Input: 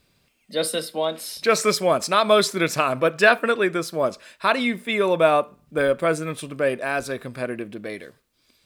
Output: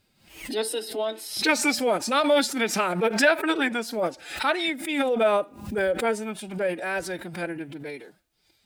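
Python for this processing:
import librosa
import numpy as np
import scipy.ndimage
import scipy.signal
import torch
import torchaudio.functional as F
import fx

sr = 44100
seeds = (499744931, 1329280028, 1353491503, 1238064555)

y = fx.pitch_keep_formants(x, sr, semitones=5.5)
y = fx.pre_swell(y, sr, db_per_s=100.0)
y = F.gain(torch.from_numpy(y), -3.5).numpy()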